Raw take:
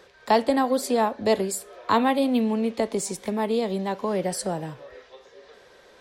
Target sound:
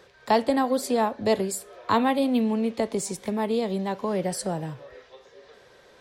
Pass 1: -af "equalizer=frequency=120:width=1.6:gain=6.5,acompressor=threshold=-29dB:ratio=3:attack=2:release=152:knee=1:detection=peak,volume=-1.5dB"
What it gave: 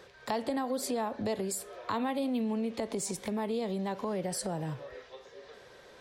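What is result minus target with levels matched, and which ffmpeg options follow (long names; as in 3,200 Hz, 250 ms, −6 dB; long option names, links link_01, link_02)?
downward compressor: peak gain reduction +12.5 dB
-af "equalizer=frequency=120:width=1.6:gain=6.5,volume=-1.5dB"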